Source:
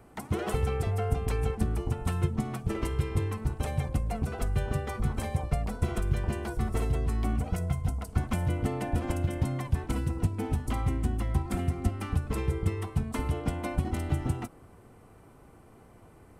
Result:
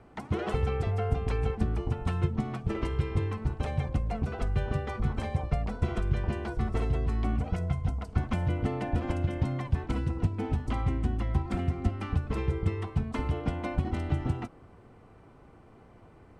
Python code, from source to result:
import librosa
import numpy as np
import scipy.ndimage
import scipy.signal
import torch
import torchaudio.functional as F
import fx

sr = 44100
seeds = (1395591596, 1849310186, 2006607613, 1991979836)

y = scipy.signal.sosfilt(scipy.signal.butter(2, 4600.0, 'lowpass', fs=sr, output='sos'), x)